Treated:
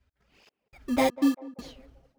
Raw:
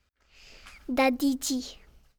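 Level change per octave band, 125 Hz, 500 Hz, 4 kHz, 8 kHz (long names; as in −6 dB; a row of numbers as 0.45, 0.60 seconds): can't be measured, 0.0 dB, −4.0 dB, −9.0 dB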